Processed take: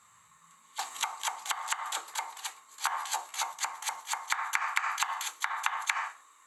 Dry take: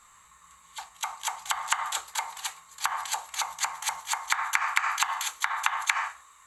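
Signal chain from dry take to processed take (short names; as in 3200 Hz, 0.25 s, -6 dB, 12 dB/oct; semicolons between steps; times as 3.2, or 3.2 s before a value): 2.67–3.52 doubler 14 ms -3 dB; high-pass sweep 120 Hz -> 300 Hz, 0.28–0.8; 0.79–2.15 three-band squash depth 100%; gain -4.5 dB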